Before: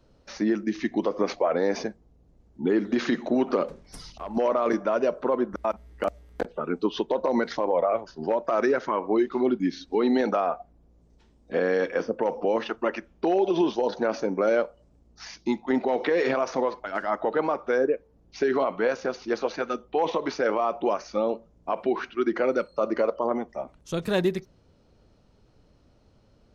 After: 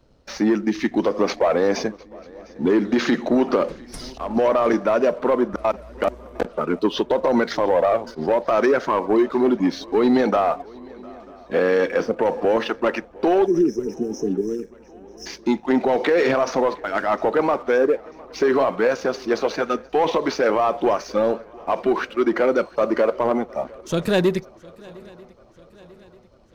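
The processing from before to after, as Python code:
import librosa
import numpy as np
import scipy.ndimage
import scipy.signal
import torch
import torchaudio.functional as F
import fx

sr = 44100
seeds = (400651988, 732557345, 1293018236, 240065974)

y = fx.leveller(x, sr, passes=1)
y = fx.spec_erase(y, sr, start_s=13.46, length_s=1.8, low_hz=470.0, high_hz=5100.0)
y = fx.echo_swing(y, sr, ms=942, ratio=3, feedback_pct=51, wet_db=-24)
y = F.gain(torch.from_numpy(y), 3.5).numpy()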